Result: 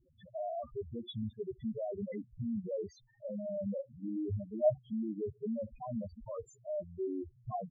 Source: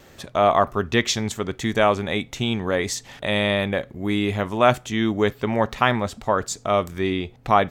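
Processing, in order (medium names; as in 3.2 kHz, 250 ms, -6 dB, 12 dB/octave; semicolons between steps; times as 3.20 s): treble shelf 4.2 kHz -9.5 dB; level held to a coarse grid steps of 14 dB; loudest bins only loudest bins 2; trim -3.5 dB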